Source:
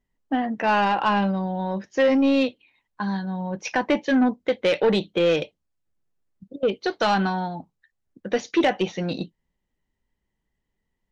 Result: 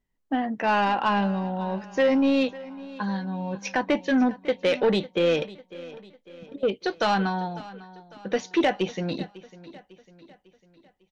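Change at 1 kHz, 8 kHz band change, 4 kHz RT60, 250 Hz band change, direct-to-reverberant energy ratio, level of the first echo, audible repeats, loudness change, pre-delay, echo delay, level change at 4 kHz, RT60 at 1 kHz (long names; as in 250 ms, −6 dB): −2.0 dB, can't be measured, no reverb audible, −2.0 dB, no reverb audible, −18.5 dB, 3, −2.0 dB, no reverb audible, 550 ms, −2.0 dB, no reverb audible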